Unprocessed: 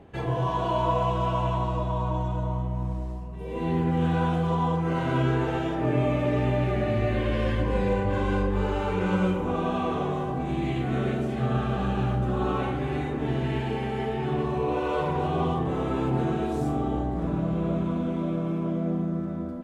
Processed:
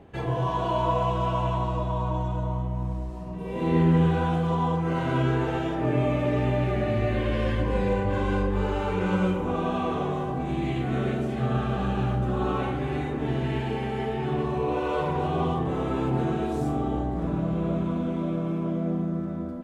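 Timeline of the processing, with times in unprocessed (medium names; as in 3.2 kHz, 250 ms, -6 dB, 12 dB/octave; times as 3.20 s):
3.07–3.94 s: reverb throw, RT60 1.5 s, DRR -2.5 dB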